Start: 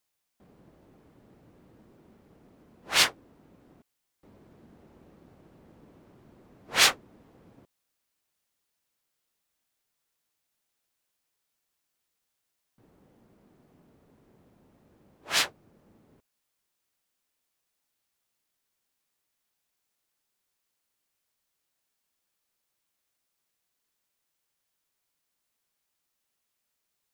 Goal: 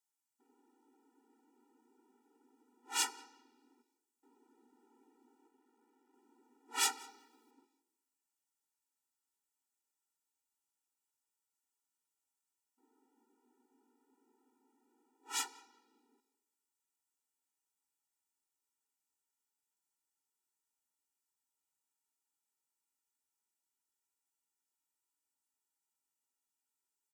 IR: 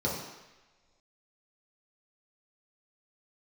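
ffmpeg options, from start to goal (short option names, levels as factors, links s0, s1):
-filter_complex "[0:a]equalizer=f=125:t=o:w=1:g=5,equalizer=f=500:t=o:w=1:g=-4,equalizer=f=1000:t=o:w=1:g=6,equalizer=f=2000:t=o:w=1:g=-4,equalizer=f=4000:t=o:w=1:g=-4,equalizer=f=8000:t=o:w=1:g=8,asplit=2[s0][s1];[s1]adelay=186,lowpass=f=1900:p=1,volume=0.1,asplit=2[s2][s3];[s3]adelay=186,lowpass=f=1900:p=1,volume=0.28[s4];[s0][s2][s4]amix=inputs=3:normalize=0,asettb=1/sr,asplit=3[s5][s6][s7];[s5]atrim=end=5.484[s8];[s6]atrim=start=5.48:end=6.14,asetpts=PTS-STARTPTS,afade=t=in:d=0.004:c=qsin,afade=t=out:st=0.656:d=0.004:c=qsin,aeval=exprs='max(val(0),0)':c=same[s9];[s7]atrim=start=6.136[s10];[s8][s9]acrossfade=d=0.004:c1=hsin:c2=qsin[s11];[s11][s10]acrossfade=d=0.004:c1=qsin:c2=hsin,asettb=1/sr,asplit=3[s12][s13][s14];[s12]atrim=end=6.974[s15];[s13]atrim=start=6.97:end=7.51,asetpts=PTS-STARTPTS,afade=t=in:d=0.004:c=qsin,afade=t=out:st=0.536:d=0.004:c=qsin,highshelf=f=6800:g=11[s16];[s14]atrim=start=7.506[s17];[s15][s16]acrossfade=d=0.004:c1=hsin:c2=qsin[s18];[s18][s17]acrossfade=d=0.004:c1=qsin:c2=hsin,asplit=2[s19][s20];[1:a]atrim=start_sample=2205[s21];[s20][s21]afir=irnorm=-1:irlink=0,volume=0.0841[s22];[s19][s22]amix=inputs=2:normalize=0,afftfilt=real='re*eq(mod(floor(b*sr/1024/250),2),1)':imag='im*eq(mod(floor(b*sr/1024/250),2),1)':win_size=1024:overlap=0.75,volume=0.376"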